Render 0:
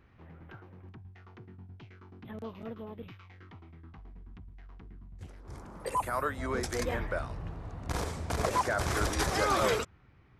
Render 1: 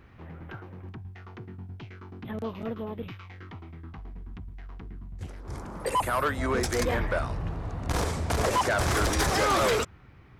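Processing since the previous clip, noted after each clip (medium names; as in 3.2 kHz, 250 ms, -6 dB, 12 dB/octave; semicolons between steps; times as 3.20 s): saturation -27.5 dBFS, distortion -11 dB; trim +8 dB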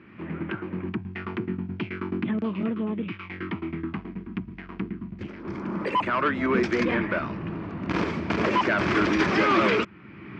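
recorder AGC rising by 23 dB/s; cabinet simulation 170–4000 Hz, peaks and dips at 200 Hz +10 dB, 330 Hz +8 dB, 500 Hz -6 dB, 760 Hz -9 dB, 2.4 kHz +5 dB, 3.8 kHz -7 dB; trim +3.5 dB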